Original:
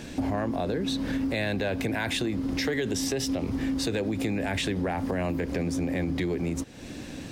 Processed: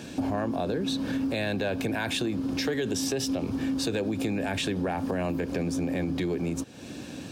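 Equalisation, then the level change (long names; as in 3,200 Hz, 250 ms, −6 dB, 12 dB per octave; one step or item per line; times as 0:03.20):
high-pass filter 93 Hz
notch filter 2,000 Hz, Q 6.3
0.0 dB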